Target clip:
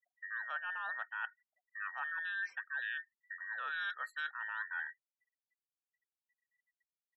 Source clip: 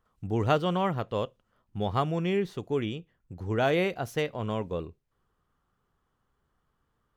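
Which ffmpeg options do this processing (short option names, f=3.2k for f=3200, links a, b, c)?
-af "afftfilt=real='real(if(between(b,1,1012),(2*floor((b-1)/92)+1)*92-b,b),0)':imag='imag(if(between(b,1,1012),(2*floor((b-1)/92)+1)*92-b,b),0)*if(between(b,1,1012),-1,1)':win_size=2048:overlap=0.75,highshelf=f=2.3k:g=-9,areverse,acompressor=threshold=-37dB:ratio=10,areverse,afftfilt=real='re*gte(hypot(re,im),0.00141)':imag='im*gte(hypot(re,im),0.00141)':win_size=1024:overlap=0.75,highpass=1k,volume=1.5dB"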